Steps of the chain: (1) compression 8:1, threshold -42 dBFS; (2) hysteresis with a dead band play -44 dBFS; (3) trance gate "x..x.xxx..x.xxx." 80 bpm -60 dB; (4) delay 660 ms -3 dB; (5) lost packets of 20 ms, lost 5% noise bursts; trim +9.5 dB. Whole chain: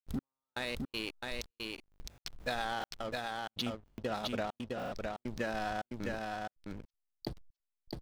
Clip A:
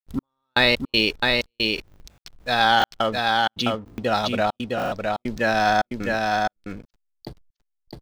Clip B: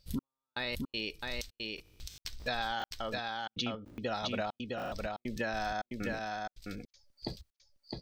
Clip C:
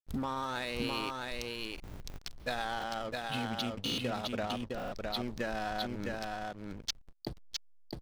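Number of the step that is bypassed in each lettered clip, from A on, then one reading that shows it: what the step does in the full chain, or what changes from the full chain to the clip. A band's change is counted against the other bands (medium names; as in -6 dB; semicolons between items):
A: 1, mean gain reduction 9.0 dB; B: 2, distortion -6 dB; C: 3, 8 kHz band +3.0 dB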